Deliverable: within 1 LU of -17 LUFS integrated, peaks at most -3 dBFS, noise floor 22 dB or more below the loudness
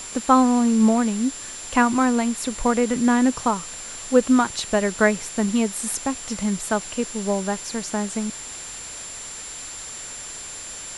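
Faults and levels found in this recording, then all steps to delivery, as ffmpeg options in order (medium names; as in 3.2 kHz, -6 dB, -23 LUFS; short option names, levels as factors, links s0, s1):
steady tone 7.3 kHz; tone level -35 dBFS; noise floor -36 dBFS; noise floor target -45 dBFS; loudness -22.5 LUFS; peak level -4.0 dBFS; loudness target -17.0 LUFS
-> -af "bandreject=f=7300:w=30"
-af "afftdn=nr=9:nf=-36"
-af "volume=1.88,alimiter=limit=0.708:level=0:latency=1"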